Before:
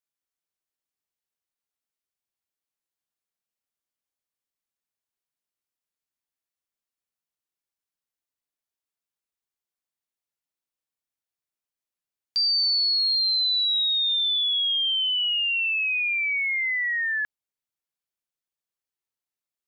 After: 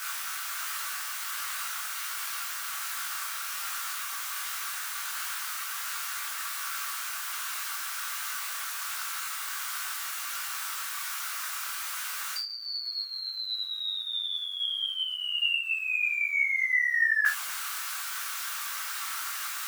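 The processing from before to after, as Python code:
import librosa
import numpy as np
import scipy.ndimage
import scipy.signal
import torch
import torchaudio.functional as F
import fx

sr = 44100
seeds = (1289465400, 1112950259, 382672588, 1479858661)

y = x + 0.5 * 10.0 ** (-40.5 / 20.0) * np.sign(x)
y = fx.over_compress(y, sr, threshold_db=-31.0, ratio=-0.5)
y = fx.dmg_crackle(y, sr, seeds[0], per_s=140.0, level_db=-47.0)
y = fx.highpass_res(y, sr, hz=1300.0, q=3.8)
y = fx.rev_gated(y, sr, seeds[1], gate_ms=100, shape='falling', drr_db=1.0)
y = fx.detune_double(y, sr, cents=46)
y = y * 10.0 ** (5.0 / 20.0)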